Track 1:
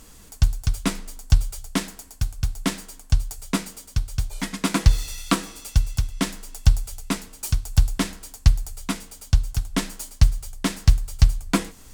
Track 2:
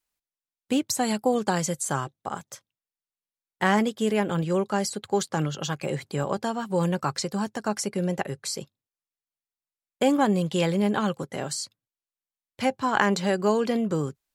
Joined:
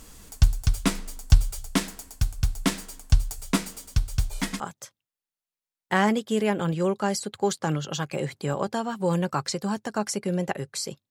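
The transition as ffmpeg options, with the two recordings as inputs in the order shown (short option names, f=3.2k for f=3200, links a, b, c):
-filter_complex "[0:a]apad=whole_dur=11.1,atrim=end=11.1,atrim=end=4.602[a];[1:a]atrim=start=2.298:end=8.8[b];[a][b]acrossfade=d=0.004:c1=hsin:c2=hsin"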